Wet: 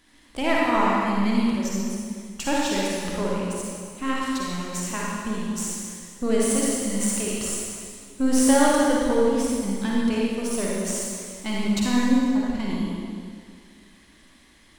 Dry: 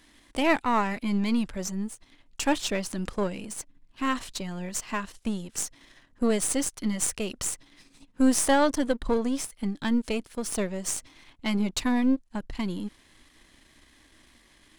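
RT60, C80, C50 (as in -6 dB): 2.1 s, -1.5 dB, -4.0 dB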